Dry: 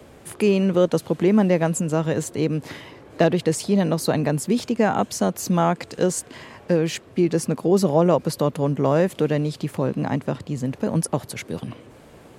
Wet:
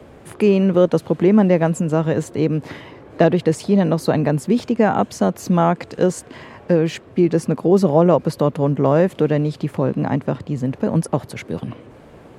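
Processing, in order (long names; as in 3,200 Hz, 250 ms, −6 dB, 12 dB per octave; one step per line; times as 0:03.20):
high-shelf EQ 3,700 Hz −11.5 dB
level +4 dB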